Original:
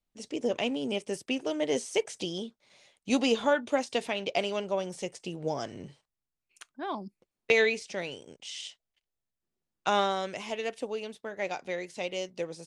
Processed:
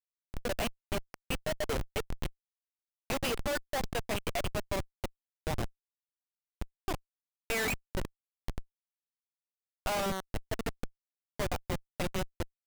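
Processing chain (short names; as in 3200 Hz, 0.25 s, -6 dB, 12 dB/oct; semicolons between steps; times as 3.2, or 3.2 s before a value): block floating point 7-bit; HPF 580 Hz 24 dB/oct; notch 870 Hz, Q 13; reverb removal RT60 1.3 s; Schmitt trigger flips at -31.5 dBFS; gain +6.5 dB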